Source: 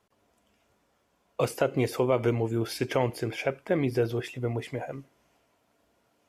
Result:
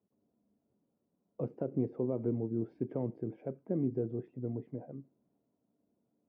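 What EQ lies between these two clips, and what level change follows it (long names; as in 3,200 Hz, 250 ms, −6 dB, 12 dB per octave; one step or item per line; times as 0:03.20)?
four-pole ladder band-pass 270 Hz, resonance 25%
low-shelf EQ 230 Hz +11.5 dB
+1.5 dB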